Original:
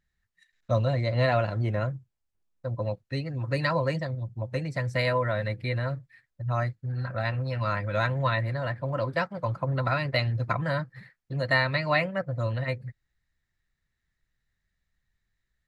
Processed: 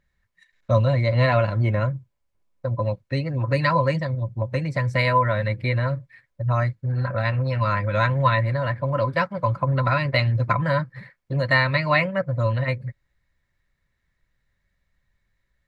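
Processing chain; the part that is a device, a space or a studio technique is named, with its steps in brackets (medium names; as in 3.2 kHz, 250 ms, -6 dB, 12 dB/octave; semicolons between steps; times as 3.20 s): inside a helmet (treble shelf 4.1 kHz -7.5 dB; small resonant body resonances 560/1000/2200 Hz, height 9 dB); dynamic bell 550 Hz, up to -8 dB, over -36 dBFS, Q 0.82; trim +7 dB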